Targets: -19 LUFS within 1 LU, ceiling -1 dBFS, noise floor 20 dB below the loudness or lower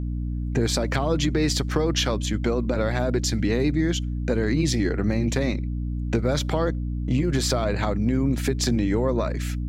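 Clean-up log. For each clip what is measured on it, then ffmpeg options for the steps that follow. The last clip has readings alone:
hum 60 Hz; harmonics up to 300 Hz; hum level -25 dBFS; loudness -24.0 LUFS; peak -9.0 dBFS; loudness target -19.0 LUFS
-> -af "bandreject=f=60:t=h:w=4,bandreject=f=120:t=h:w=4,bandreject=f=180:t=h:w=4,bandreject=f=240:t=h:w=4,bandreject=f=300:t=h:w=4"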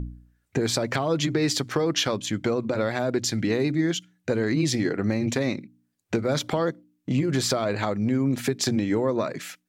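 hum none; loudness -25.5 LUFS; peak -11.0 dBFS; loudness target -19.0 LUFS
-> -af "volume=6.5dB"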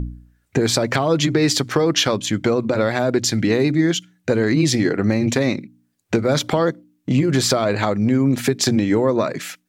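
loudness -19.0 LUFS; peak -4.5 dBFS; noise floor -67 dBFS

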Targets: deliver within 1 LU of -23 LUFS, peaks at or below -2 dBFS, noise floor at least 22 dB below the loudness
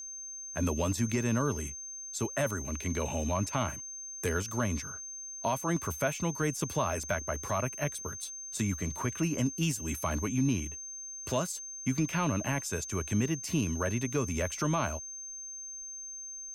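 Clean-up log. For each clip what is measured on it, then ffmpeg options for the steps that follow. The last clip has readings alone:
steady tone 6300 Hz; tone level -40 dBFS; loudness -32.5 LUFS; peak -19.0 dBFS; loudness target -23.0 LUFS
-> -af "bandreject=f=6.3k:w=30"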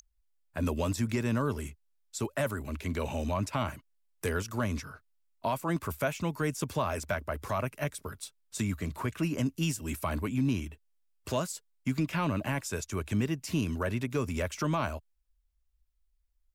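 steady tone none; loudness -33.0 LUFS; peak -19.5 dBFS; loudness target -23.0 LUFS
-> -af "volume=10dB"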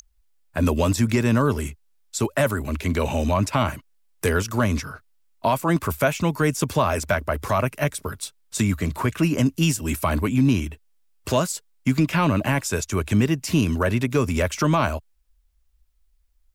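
loudness -23.0 LUFS; peak -9.5 dBFS; noise floor -63 dBFS

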